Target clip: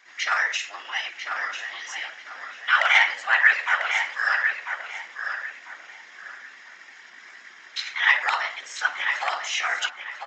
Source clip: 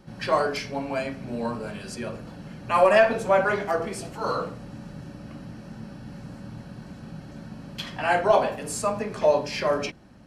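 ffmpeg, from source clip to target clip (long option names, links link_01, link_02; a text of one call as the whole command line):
ffmpeg -i in.wav -filter_complex "[0:a]afftfilt=real='hypot(re,im)*cos(2*PI*random(0))':imag='hypot(re,im)*sin(2*PI*random(1))':win_size=512:overlap=0.75,asetrate=53981,aresample=44100,atempo=0.816958,aresample=16000,asoftclip=type=hard:threshold=-16.5dB,aresample=44100,highpass=frequency=1800:width_type=q:width=2.7,asplit=2[link_01][link_02];[link_02]adelay=995,lowpass=frequency=4100:poles=1,volume=-6dB,asplit=2[link_03][link_04];[link_04]adelay=995,lowpass=frequency=4100:poles=1,volume=0.29,asplit=2[link_05][link_06];[link_06]adelay=995,lowpass=frequency=4100:poles=1,volume=0.29,asplit=2[link_07][link_08];[link_08]adelay=995,lowpass=frequency=4100:poles=1,volume=0.29[link_09];[link_01][link_03][link_05][link_07][link_09]amix=inputs=5:normalize=0,volume=8dB" out.wav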